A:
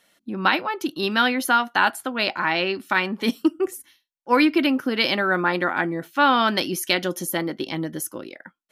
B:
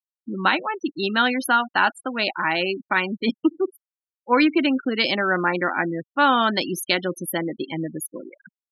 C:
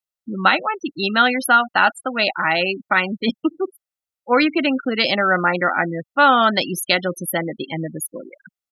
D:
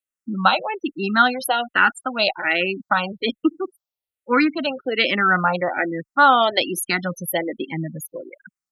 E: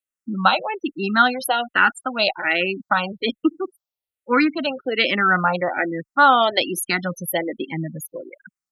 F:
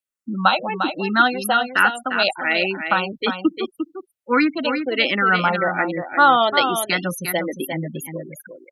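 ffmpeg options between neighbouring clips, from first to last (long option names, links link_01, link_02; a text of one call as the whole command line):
ffmpeg -i in.wav -af "afftfilt=real='re*gte(hypot(re,im),0.0562)':imag='im*gte(hypot(re,im),0.0562)':win_size=1024:overlap=0.75" out.wav
ffmpeg -i in.wav -af "aecho=1:1:1.5:0.4,volume=3.5dB" out.wav
ffmpeg -i in.wav -filter_complex "[0:a]asplit=2[link_01][link_02];[link_02]afreqshift=-1.2[link_03];[link_01][link_03]amix=inputs=2:normalize=1,volume=1.5dB" out.wav
ffmpeg -i in.wav -af anull out.wav
ffmpeg -i in.wav -af "aecho=1:1:351:0.422" out.wav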